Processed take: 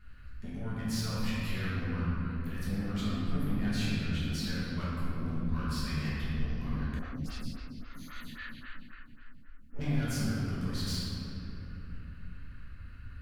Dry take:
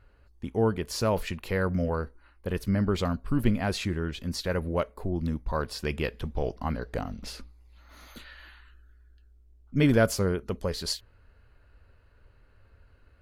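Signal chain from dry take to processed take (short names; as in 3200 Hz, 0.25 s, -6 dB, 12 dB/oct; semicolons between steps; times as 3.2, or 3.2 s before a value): band shelf 570 Hz -16 dB; compressor 2:1, threshold -45 dBFS, peak gain reduction 14.5 dB; soft clip -38.5 dBFS, distortion -10 dB; shoebox room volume 160 m³, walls hard, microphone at 1.4 m; 6.99–9.79 photocell phaser 3.7 Hz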